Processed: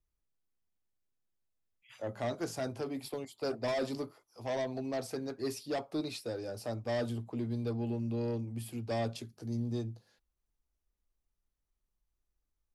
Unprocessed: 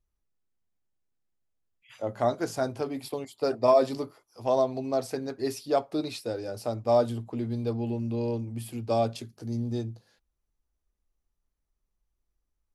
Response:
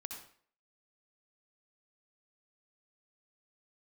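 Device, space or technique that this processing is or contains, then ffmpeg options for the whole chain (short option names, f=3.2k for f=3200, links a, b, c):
one-band saturation: -filter_complex "[0:a]acrossover=split=280|2500[a][b][c];[b]asoftclip=type=tanh:threshold=-28dB[d];[a][d][c]amix=inputs=3:normalize=0,volume=-4dB"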